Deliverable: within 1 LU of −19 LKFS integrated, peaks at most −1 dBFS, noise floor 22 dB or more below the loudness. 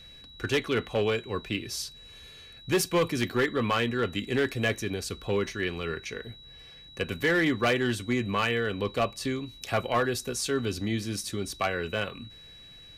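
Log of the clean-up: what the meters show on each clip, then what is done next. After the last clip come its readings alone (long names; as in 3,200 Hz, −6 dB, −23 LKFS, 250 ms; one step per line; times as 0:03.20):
share of clipped samples 0.8%; peaks flattened at −19.0 dBFS; interfering tone 3,900 Hz; level of the tone −48 dBFS; integrated loudness −29.0 LKFS; sample peak −19.0 dBFS; target loudness −19.0 LKFS
→ clipped peaks rebuilt −19 dBFS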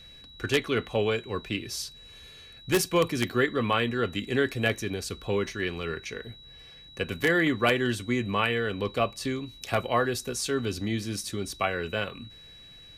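share of clipped samples 0.0%; interfering tone 3,900 Hz; level of the tone −48 dBFS
→ notch filter 3,900 Hz, Q 30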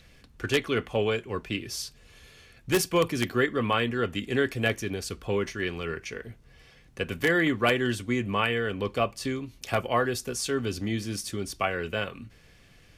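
interfering tone none found; integrated loudness −28.5 LKFS; sample peak −9.5 dBFS; target loudness −19.0 LKFS
→ level +9.5 dB
brickwall limiter −1 dBFS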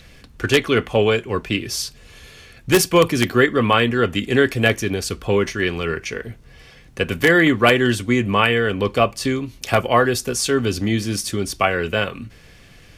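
integrated loudness −19.0 LKFS; sample peak −1.0 dBFS; background noise floor −47 dBFS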